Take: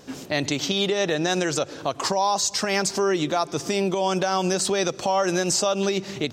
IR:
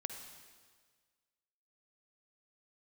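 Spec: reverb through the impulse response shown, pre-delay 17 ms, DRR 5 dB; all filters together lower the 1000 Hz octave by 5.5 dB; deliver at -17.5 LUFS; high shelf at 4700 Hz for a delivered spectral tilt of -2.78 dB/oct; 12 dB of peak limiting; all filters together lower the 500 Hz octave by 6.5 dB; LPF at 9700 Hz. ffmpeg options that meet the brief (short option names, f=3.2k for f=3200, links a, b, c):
-filter_complex "[0:a]lowpass=9.7k,equalizer=f=500:t=o:g=-8,equalizer=f=1k:t=o:g=-4.5,highshelf=f=4.7k:g=8,alimiter=limit=-18dB:level=0:latency=1,asplit=2[a][b];[1:a]atrim=start_sample=2205,adelay=17[c];[b][c]afir=irnorm=-1:irlink=0,volume=-4dB[d];[a][d]amix=inputs=2:normalize=0,volume=9dB"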